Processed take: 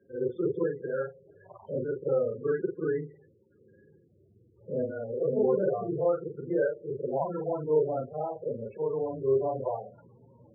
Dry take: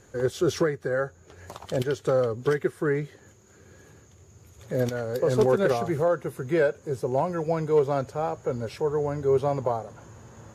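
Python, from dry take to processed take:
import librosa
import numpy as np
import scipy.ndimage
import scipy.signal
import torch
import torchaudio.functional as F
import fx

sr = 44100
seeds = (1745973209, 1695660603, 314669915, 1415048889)

y = fx.frame_reverse(x, sr, frame_ms=104.0)
y = fx.air_absorb(y, sr, metres=250.0)
y = fx.echo_wet_lowpass(y, sr, ms=84, feedback_pct=49, hz=860.0, wet_db=-21.5)
y = fx.spec_topn(y, sr, count=16)
y = fx.bandpass_edges(y, sr, low_hz=170.0, high_hz=2700.0)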